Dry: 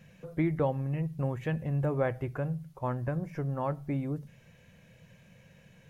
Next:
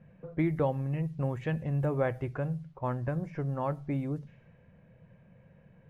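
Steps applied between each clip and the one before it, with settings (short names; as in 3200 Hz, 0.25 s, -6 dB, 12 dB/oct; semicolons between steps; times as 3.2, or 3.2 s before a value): low-pass opened by the level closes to 1100 Hz, open at -27 dBFS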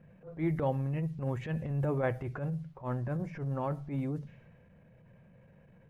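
transient shaper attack -12 dB, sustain +2 dB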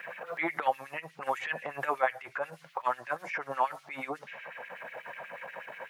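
LFO high-pass sine 8.2 Hz 740–2500 Hz; three-band squash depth 70%; gain +8.5 dB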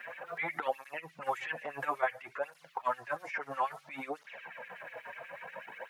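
tape flanging out of phase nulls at 0.59 Hz, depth 6.1 ms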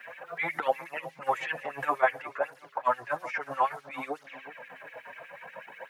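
darkening echo 0.371 s, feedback 41%, low-pass 1300 Hz, level -11 dB; three-band expander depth 40%; gain +4.5 dB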